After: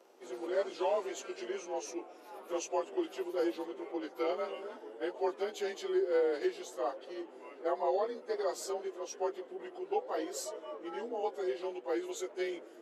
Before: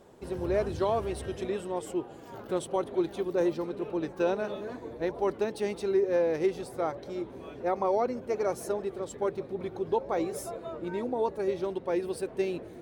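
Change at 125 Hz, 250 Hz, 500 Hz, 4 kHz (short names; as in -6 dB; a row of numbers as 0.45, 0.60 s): under -25 dB, -6.5 dB, -5.5 dB, 0.0 dB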